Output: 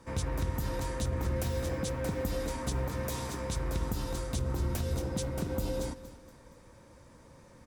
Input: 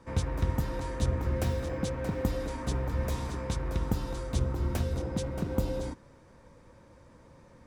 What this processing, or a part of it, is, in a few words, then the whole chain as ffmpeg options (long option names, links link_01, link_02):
clipper into limiter: -filter_complex "[0:a]asettb=1/sr,asplit=3[link_01][link_02][link_03];[link_01]atrim=end=2.874[link_04];[link_02]atrim=start=2.87:end=3.4,asetpts=PTS-STARTPTS,afade=type=in:duration=0.004:curve=qsin,afade=type=out:start_time=0.526:duration=0.004:curve=qsin,highpass=frequency=130:poles=1[link_05];[link_03]atrim=start=3.396[link_06];[link_04][link_05]acrossfade=duration=0.004:curve1=hsin:curve2=qsin[link_07];[link_07][link_06]acrossfade=duration=0.004:curve1=qsin:curve2=hsin,aemphasis=mode=production:type=cd,aecho=1:1:234|468|702|936:0.158|0.0682|0.0293|0.0126,asoftclip=type=hard:threshold=-17dB,alimiter=limit=-22.5dB:level=0:latency=1:release=80"